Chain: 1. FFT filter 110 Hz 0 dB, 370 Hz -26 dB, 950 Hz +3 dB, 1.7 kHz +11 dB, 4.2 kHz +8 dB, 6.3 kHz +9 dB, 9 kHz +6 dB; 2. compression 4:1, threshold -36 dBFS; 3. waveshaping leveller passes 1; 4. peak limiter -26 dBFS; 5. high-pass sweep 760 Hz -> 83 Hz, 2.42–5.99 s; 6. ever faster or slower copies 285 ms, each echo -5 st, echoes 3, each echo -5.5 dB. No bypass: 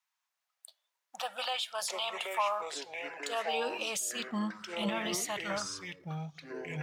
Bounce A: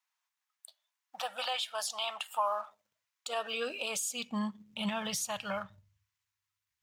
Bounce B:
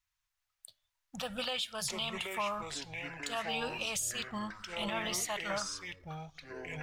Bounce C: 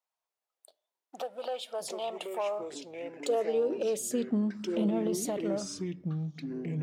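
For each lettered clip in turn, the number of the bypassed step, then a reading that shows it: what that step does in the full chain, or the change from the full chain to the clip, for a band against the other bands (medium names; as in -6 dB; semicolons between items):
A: 6, momentary loudness spread change -2 LU; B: 5, 8 kHz band +3.0 dB; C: 1, 2 kHz band -13.0 dB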